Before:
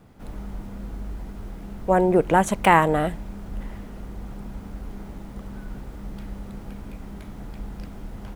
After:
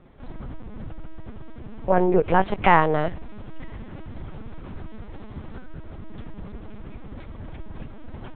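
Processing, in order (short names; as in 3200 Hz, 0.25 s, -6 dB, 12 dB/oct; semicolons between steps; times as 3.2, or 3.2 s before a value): tracing distortion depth 0.029 ms; LPC vocoder at 8 kHz pitch kept; 3.29–5.66 mismatched tape noise reduction encoder only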